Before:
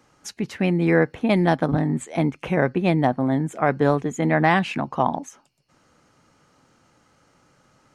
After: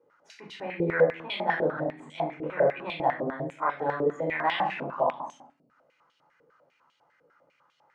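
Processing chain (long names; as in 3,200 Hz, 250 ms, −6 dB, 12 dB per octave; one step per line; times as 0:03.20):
rectangular room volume 900 cubic metres, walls furnished, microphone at 4.7 metres
band-pass on a step sequencer 10 Hz 460–3,200 Hz
level −2 dB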